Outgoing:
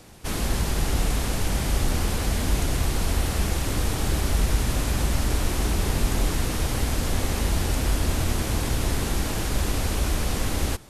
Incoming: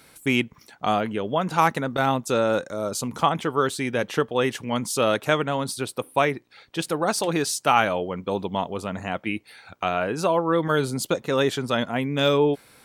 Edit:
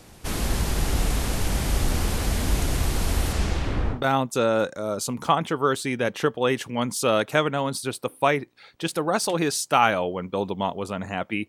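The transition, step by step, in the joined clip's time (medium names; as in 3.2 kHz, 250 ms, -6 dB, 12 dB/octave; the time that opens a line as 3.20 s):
outgoing
3.32–4.02 s: low-pass 10 kHz -> 1.1 kHz
3.96 s: go over to incoming from 1.90 s, crossfade 0.12 s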